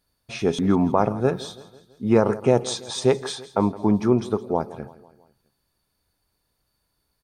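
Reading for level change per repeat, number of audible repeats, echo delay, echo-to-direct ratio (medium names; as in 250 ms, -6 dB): -5.5 dB, 3, 165 ms, -16.5 dB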